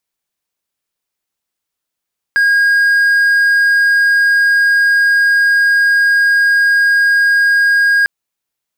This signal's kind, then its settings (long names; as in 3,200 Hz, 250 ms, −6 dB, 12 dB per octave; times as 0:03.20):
tone triangle 1,630 Hz −6 dBFS 5.70 s